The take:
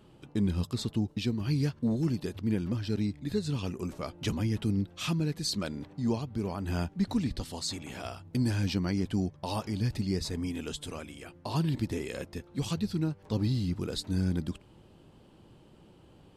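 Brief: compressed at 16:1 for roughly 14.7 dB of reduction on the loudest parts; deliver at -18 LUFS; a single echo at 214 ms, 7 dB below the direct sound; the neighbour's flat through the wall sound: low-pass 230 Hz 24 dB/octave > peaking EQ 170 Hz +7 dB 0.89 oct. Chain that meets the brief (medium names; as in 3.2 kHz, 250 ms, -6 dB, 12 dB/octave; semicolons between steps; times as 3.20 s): compression 16:1, threshold -39 dBFS; low-pass 230 Hz 24 dB/octave; peaking EQ 170 Hz +7 dB 0.89 oct; delay 214 ms -7 dB; trim +24 dB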